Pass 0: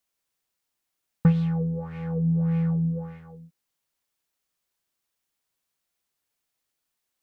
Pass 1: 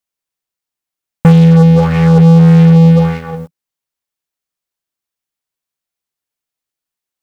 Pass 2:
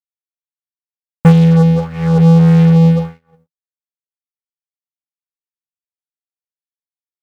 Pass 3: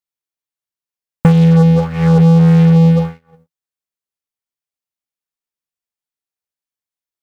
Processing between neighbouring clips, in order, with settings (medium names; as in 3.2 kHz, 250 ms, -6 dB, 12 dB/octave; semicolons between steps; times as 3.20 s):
waveshaping leveller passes 5; trim +6.5 dB
upward expansion 2.5:1, over -27 dBFS
compression, threshold -11 dBFS, peak gain reduction 7.5 dB; trim +4 dB